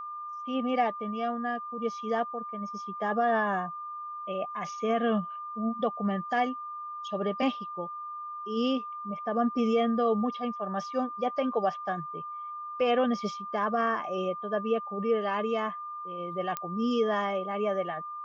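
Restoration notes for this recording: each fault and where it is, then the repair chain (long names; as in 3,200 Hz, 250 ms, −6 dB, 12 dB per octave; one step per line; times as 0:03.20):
whistle 1,200 Hz −36 dBFS
0:16.57: click −16 dBFS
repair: click removal
notch filter 1,200 Hz, Q 30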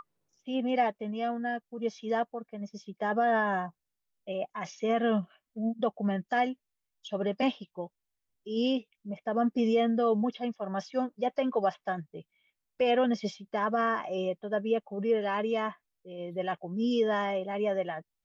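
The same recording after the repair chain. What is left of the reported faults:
none of them is left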